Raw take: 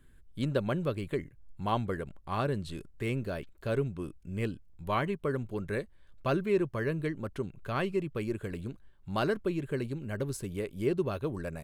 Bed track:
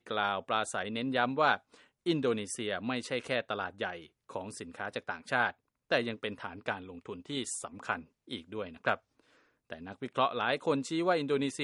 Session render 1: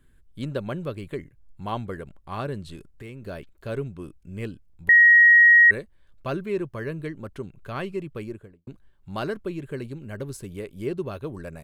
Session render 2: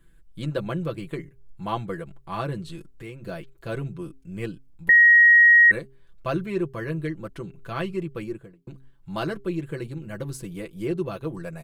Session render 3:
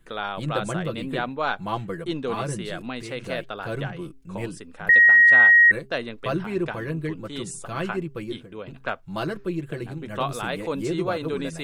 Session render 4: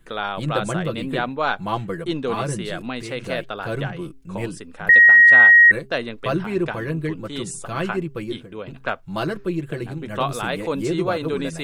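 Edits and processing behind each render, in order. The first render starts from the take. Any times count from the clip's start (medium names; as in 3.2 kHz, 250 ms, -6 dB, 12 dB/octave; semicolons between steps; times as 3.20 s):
2.75–3.25 s: compression, threshold -36 dBFS; 4.89–5.71 s: bleep 1.89 kHz -10 dBFS; 8.15–8.67 s: studio fade out
comb 6 ms, depth 75%; de-hum 133.6 Hz, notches 3
add bed track +1 dB
trim +3.5 dB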